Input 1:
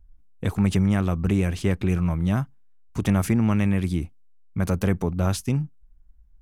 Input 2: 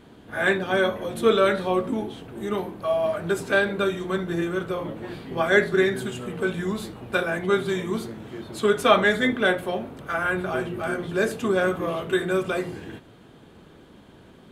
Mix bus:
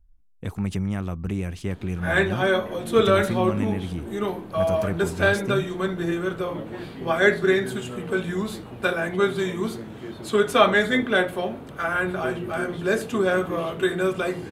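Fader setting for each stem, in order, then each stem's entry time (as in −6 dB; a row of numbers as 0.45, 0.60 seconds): −6.0, +0.5 decibels; 0.00, 1.70 seconds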